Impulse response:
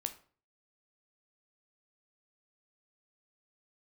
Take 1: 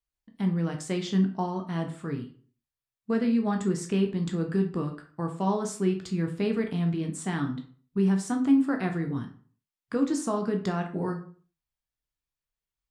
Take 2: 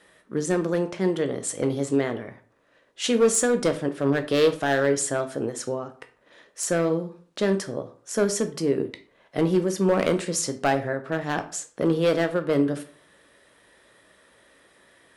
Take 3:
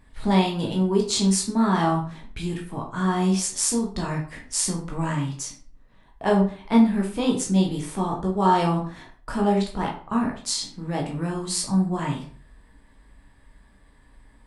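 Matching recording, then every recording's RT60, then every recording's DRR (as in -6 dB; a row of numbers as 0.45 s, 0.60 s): 2; 0.45 s, 0.45 s, 0.45 s; 3.5 dB, 7.5 dB, -1.0 dB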